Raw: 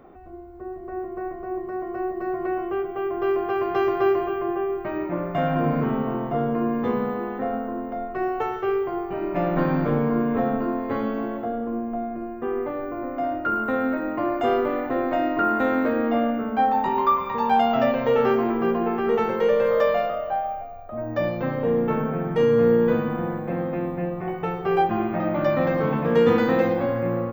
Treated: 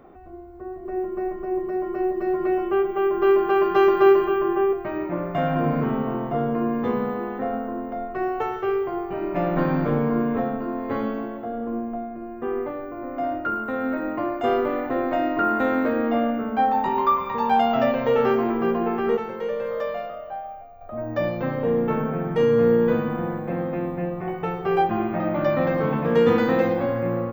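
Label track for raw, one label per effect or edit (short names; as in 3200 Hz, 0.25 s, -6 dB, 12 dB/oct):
0.850000	4.730000	comb 5 ms, depth 95%
10.220000	14.440000	tremolo 1.3 Hz, depth 34%
19.170000	20.810000	gain -7.5 dB
24.900000	26.030000	bell 11000 Hz -14.5 dB 0.57 oct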